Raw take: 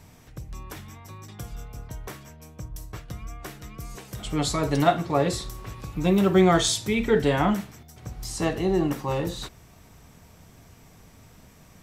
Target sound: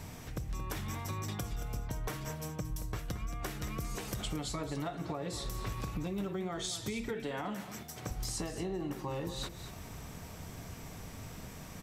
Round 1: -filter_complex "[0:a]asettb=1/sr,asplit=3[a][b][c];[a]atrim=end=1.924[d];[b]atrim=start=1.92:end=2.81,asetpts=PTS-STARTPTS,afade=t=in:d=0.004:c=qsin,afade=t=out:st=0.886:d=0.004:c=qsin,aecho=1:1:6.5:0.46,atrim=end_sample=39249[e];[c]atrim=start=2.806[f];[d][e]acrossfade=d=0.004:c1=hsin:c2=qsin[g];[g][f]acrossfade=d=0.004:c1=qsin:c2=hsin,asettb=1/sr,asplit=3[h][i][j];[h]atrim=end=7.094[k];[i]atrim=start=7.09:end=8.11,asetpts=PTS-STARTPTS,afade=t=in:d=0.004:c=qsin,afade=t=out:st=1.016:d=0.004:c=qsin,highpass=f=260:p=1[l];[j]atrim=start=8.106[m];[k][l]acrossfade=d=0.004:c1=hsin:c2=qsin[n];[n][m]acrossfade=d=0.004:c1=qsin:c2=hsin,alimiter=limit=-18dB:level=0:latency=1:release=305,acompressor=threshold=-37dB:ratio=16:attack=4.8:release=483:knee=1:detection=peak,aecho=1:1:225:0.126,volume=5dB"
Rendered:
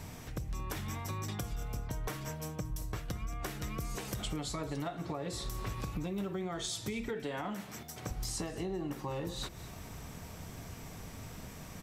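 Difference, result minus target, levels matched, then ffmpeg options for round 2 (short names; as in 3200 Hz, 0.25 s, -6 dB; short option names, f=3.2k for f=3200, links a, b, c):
echo-to-direct -6.5 dB
-filter_complex "[0:a]asettb=1/sr,asplit=3[a][b][c];[a]atrim=end=1.924[d];[b]atrim=start=1.92:end=2.81,asetpts=PTS-STARTPTS,afade=t=in:d=0.004:c=qsin,afade=t=out:st=0.886:d=0.004:c=qsin,aecho=1:1:6.5:0.46,atrim=end_sample=39249[e];[c]atrim=start=2.806[f];[d][e]acrossfade=d=0.004:c1=hsin:c2=qsin[g];[g][f]acrossfade=d=0.004:c1=qsin:c2=hsin,asettb=1/sr,asplit=3[h][i][j];[h]atrim=end=7.094[k];[i]atrim=start=7.09:end=8.11,asetpts=PTS-STARTPTS,afade=t=in:d=0.004:c=qsin,afade=t=out:st=1.016:d=0.004:c=qsin,highpass=f=260:p=1[l];[j]atrim=start=8.106[m];[k][l]acrossfade=d=0.004:c1=hsin:c2=qsin[n];[n][m]acrossfade=d=0.004:c1=qsin:c2=hsin,alimiter=limit=-18dB:level=0:latency=1:release=305,acompressor=threshold=-37dB:ratio=16:attack=4.8:release=483:knee=1:detection=peak,aecho=1:1:225:0.266,volume=5dB"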